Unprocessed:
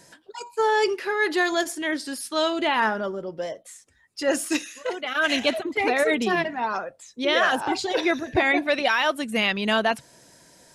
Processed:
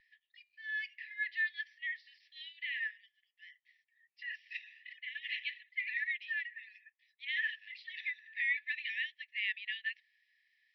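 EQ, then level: brick-wall FIR band-pass 1700–6000 Hz; air absorption 460 m; tilt -4 dB/oct; 0.0 dB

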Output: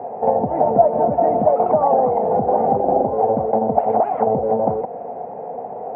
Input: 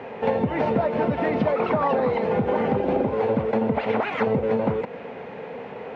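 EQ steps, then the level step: synth low-pass 730 Hz, resonance Q 7.3; -1.5 dB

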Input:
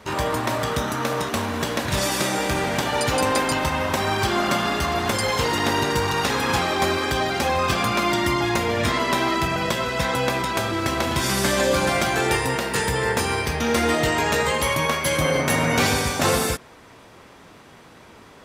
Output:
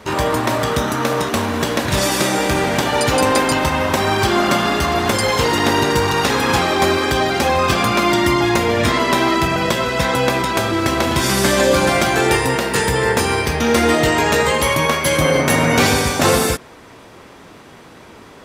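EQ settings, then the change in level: bell 340 Hz +2.5 dB 1.2 oct; +5.0 dB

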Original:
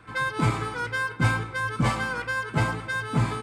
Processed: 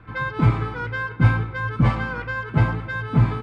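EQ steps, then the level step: LPF 3000 Hz 12 dB/oct; low shelf 100 Hz +6 dB; low shelf 240 Hz +6.5 dB; 0.0 dB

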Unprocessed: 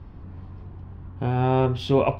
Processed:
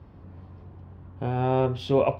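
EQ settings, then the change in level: HPF 68 Hz; bell 550 Hz +5 dB 0.71 oct; -4.0 dB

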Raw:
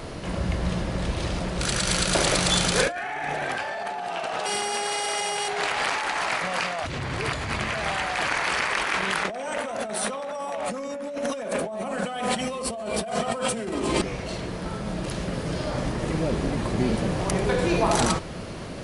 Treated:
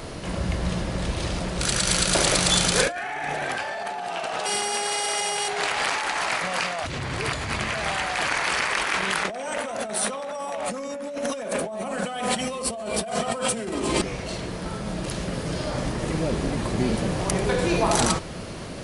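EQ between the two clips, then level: high shelf 4700 Hz +5 dB; 0.0 dB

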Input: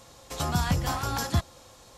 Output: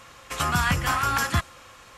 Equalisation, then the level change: dynamic EQ 9300 Hz, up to +6 dB, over -51 dBFS, Q 1.1; band shelf 1800 Hz +11 dB; 0.0 dB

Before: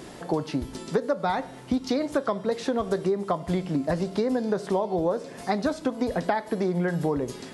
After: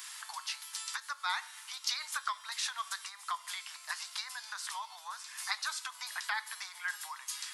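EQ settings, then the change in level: steep high-pass 980 Hz 48 dB/oct; tilt +3.5 dB/oct; -3.0 dB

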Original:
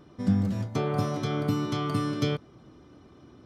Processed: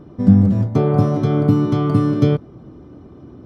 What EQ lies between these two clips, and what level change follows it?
tilt shelf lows +8.5 dB, about 1200 Hz; +5.0 dB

